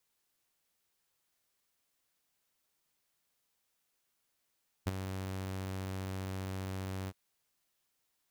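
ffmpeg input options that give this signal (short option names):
-f lavfi -i "aevalsrc='0.0562*(2*mod(95*t,1)-1)':d=2.265:s=44100,afade=t=in:d=0.016,afade=t=out:st=0.016:d=0.026:silence=0.335,afade=t=out:st=2.22:d=0.045"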